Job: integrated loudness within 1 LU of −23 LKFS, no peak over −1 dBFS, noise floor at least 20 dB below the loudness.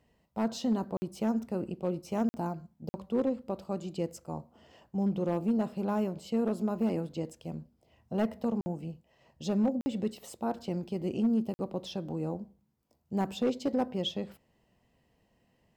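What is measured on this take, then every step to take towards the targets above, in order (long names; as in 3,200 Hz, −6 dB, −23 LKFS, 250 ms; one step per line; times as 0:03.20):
share of clipped samples 0.5%; peaks flattened at −21.5 dBFS; number of dropouts 6; longest dropout 50 ms; integrated loudness −33.0 LKFS; sample peak −21.5 dBFS; target loudness −23.0 LKFS
→ clipped peaks rebuilt −21.5 dBFS
repair the gap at 0:00.97/0:02.29/0:02.89/0:08.61/0:09.81/0:11.54, 50 ms
level +10 dB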